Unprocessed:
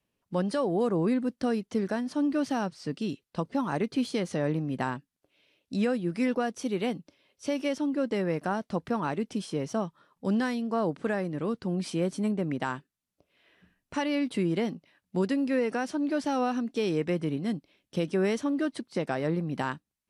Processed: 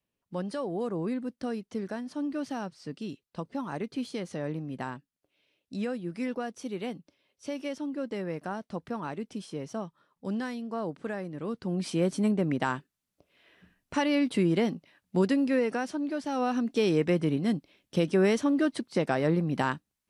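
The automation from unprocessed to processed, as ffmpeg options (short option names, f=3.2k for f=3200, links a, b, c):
-af "volume=10.5dB,afade=t=in:st=11.37:d=0.75:silence=0.398107,afade=t=out:st=15.27:d=0.97:silence=0.421697,afade=t=in:st=16.24:d=0.46:silence=0.398107"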